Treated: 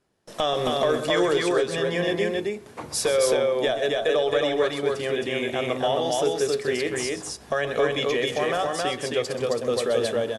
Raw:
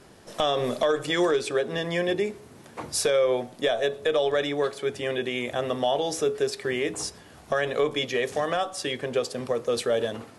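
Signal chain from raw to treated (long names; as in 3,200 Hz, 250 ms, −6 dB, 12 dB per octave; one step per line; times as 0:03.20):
noise gate with hold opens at −37 dBFS
loudspeakers that aren't time-aligned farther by 44 metres −11 dB, 92 metres −2 dB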